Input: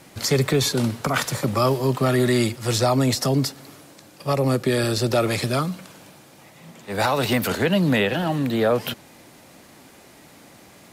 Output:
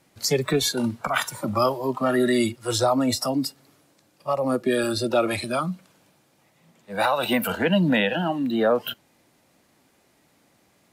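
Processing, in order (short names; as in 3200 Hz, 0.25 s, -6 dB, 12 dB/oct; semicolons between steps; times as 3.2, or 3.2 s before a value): spectral noise reduction 14 dB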